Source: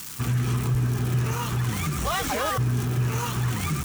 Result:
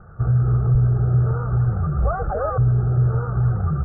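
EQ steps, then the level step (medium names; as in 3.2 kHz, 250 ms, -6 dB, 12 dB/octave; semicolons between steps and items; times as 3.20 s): steep low-pass 1.4 kHz 72 dB/octave; bass shelf 89 Hz +10 dB; static phaser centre 1 kHz, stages 6; +6.0 dB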